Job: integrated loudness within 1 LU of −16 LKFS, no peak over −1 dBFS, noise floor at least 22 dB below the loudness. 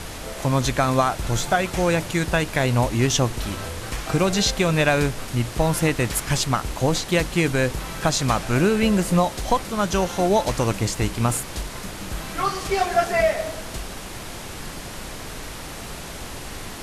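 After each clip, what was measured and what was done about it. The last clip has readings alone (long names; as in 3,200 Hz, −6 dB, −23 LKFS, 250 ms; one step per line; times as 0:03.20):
background noise floor −35 dBFS; target noise floor −44 dBFS; integrated loudness −22.0 LKFS; sample peak −6.0 dBFS; target loudness −16.0 LKFS
→ noise reduction from a noise print 9 dB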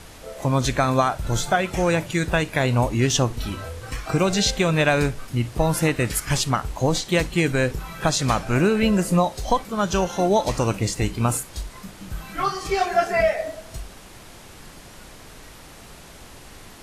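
background noise floor −44 dBFS; integrated loudness −22.0 LKFS; sample peak −6.0 dBFS; target loudness −16.0 LKFS
→ level +6 dB
brickwall limiter −1 dBFS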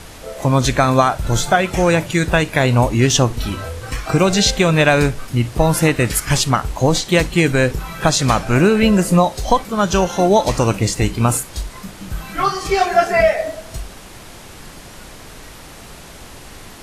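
integrated loudness −16.0 LKFS; sample peak −1.0 dBFS; background noise floor −38 dBFS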